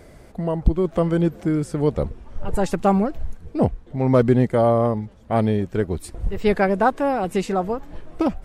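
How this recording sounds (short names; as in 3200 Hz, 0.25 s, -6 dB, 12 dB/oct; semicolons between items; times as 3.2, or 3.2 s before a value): noise floor -46 dBFS; spectral tilt -6.0 dB/oct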